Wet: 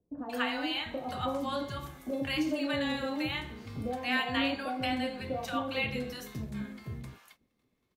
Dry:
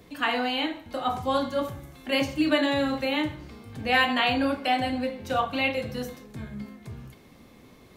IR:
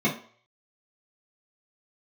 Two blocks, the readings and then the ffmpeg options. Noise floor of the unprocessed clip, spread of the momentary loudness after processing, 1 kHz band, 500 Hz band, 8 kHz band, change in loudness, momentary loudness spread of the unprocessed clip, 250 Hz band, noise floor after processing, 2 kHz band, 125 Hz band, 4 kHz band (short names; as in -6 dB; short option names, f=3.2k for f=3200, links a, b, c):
-53 dBFS, 10 LU, -8.5 dB, -7.5 dB, -4.0 dB, -7.0 dB, 18 LU, -5.5 dB, -77 dBFS, -6.5 dB, -2.5 dB, -6.0 dB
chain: -filter_complex "[0:a]agate=range=-25dB:threshold=-47dB:ratio=16:detection=peak,acompressor=threshold=-32dB:ratio=2,acrossover=split=740[a][b];[b]adelay=180[c];[a][c]amix=inputs=2:normalize=0"